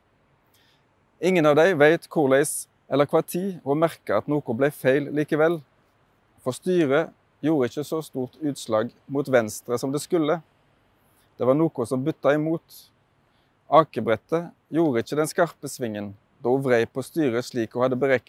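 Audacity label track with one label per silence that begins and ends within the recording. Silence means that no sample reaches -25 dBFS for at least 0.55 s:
5.560000	6.460000	silence
10.360000	11.410000	silence
12.570000	13.720000	silence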